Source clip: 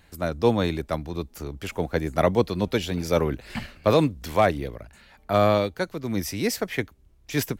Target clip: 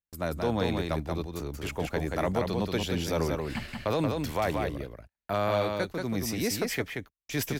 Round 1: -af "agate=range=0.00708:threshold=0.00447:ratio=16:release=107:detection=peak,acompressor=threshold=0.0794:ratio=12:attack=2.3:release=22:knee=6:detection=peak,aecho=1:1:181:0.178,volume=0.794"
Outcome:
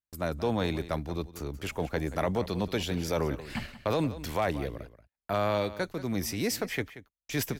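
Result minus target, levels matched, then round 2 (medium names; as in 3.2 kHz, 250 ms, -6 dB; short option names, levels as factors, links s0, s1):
echo-to-direct -11 dB
-af "agate=range=0.00708:threshold=0.00447:ratio=16:release=107:detection=peak,acompressor=threshold=0.0794:ratio=12:attack=2.3:release=22:knee=6:detection=peak,aecho=1:1:181:0.631,volume=0.794"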